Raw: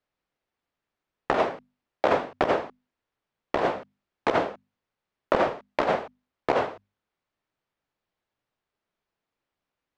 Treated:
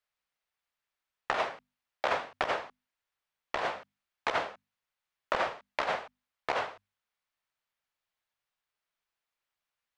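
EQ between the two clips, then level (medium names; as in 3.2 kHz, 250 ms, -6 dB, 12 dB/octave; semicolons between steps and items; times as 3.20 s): bass shelf 150 Hz -9.5 dB; peaking EQ 300 Hz -14.5 dB 2.5 oct; 0.0 dB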